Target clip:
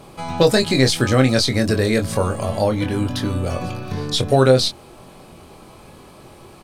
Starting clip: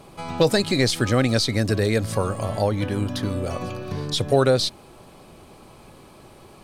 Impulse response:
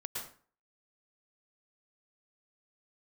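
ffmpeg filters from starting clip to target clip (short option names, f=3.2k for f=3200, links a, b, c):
-filter_complex "[0:a]asplit=2[a][b];[b]adelay=23,volume=-6dB[c];[a][c]amix=inputs=2:normalize=0,volume=3dB"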